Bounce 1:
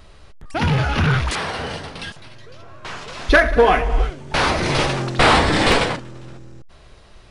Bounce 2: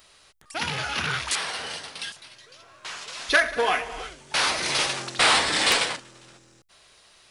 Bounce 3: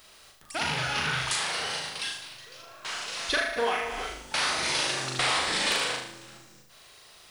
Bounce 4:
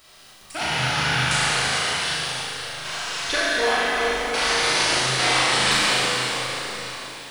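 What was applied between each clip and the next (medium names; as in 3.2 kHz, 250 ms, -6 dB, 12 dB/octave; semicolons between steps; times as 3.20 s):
tilt EQ +4 dB/octave; hum notches 50/100 Hz; trim -7.5 dB
compression 3:1, threshold -28 dBFS, peak gain reduction 10.5 dB; added noise violet -67 dBFS; on a send: flutter echo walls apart 6.6 m, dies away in 0.61 s
plate-style reverb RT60 4.7 s, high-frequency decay 0.9×, DRR -7 dB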